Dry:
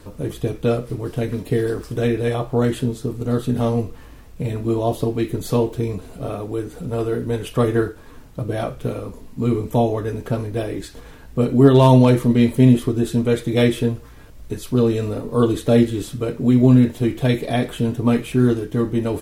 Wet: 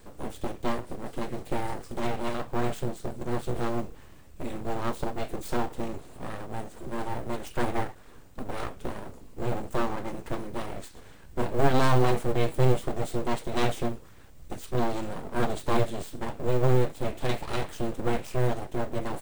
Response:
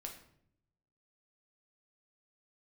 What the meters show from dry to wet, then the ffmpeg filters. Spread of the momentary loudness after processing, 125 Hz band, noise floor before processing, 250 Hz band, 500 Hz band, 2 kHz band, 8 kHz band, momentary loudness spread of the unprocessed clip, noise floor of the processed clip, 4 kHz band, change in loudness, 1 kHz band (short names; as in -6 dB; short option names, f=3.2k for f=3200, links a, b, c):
14 LU, -12.0 dB, -41 dBFS, -15.0 dB, -10.5 dB, -4.5 dB, -6.0 dB, 14 LU, -48 dBFS, -7.0 dB, -11.5 dB, -3.5 dB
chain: -af "aeval=exprs='abs(val(0))':c=same,acrusher=bits=9:mode=log:mix=0:aa=0.000001,aexciter=amount=1.2:drive=2.6:freq=7.3k,volume=-7dB"